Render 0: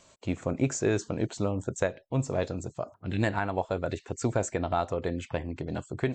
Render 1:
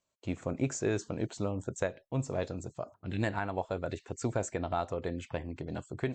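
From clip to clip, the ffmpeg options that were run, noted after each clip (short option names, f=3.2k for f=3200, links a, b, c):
-af "agate=range=-21dB:threshold=-51dB:ratio=16:detection=peak,volume=-4.5dB"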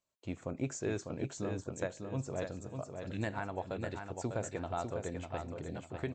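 -af "aecho=1:1:599|1198|1797|2396:0.501|0.17|0.0579|0.0197,volume=-5dB"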